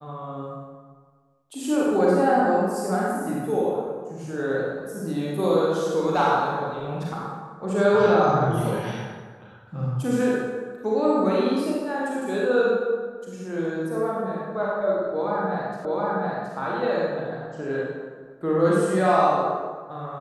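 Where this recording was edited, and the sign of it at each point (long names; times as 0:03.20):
0:15.85: the same again, the last 0.72 s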